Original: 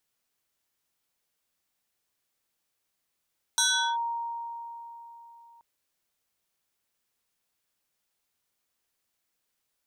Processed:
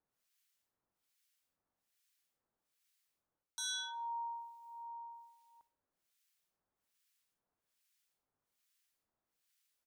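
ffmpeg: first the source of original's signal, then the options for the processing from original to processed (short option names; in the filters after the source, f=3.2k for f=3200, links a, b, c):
-f lavfi -i "aevalsrc='0.1*pow(10,-3*t/3.71)*sin(2*PI*933*t+3.3*clip(1-t/0.39,0,1)*sin(2*PI*2.62*933*t))':d=2.03:s=44100"
-filter_complex "[0:a]areverse,acompressor=threshold=-37dB:ratio=8,areverse,acrossover=split=1400[a][b];[a]aeval=exprs='val(0)*(1-1/2+1/2*cos(2*PI*1.2*n/s))':c=same[c];[b]aeval=exprs='val(0)*(1-1/2-1/2*cos(2*PI*1.2*n/s))':c=same[d];[c][d]amix=inputs=2:normalize=0,aecho=1:1:63|126|189:0.119|0.0428|0.0154"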